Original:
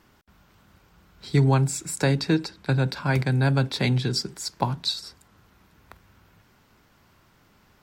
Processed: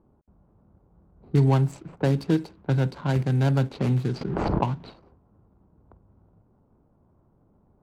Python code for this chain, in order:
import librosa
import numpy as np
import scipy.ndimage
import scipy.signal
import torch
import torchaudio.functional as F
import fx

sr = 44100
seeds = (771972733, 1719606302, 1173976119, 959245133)

y = scipy.signal.medfilt(x, 25)
y = fx.env_lowpass(y, sr, base_hz=780.0, full_db=-19.5)
y = fx.pre_swell(y, sr, db_per_s=22.0, at=(4.21, 4.93))